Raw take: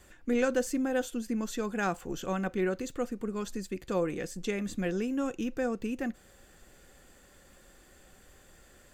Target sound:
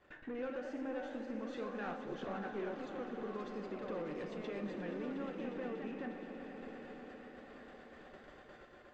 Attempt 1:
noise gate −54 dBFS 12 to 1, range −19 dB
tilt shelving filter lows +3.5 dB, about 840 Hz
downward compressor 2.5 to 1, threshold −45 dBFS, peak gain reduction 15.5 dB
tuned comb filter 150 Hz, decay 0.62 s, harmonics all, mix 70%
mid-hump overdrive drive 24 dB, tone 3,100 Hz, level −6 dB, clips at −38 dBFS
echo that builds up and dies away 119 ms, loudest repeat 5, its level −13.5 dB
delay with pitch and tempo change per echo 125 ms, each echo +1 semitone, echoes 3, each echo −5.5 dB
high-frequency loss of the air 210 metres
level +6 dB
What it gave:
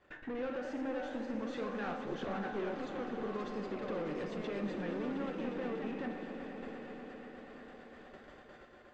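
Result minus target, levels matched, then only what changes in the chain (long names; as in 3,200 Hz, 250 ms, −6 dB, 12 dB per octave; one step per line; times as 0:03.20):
downward compressor: peak gain reduction −7 dB
change: downward compressor 2.5 to 1, threshold −56.5 dBFS, peak gain reduction 22.5 dB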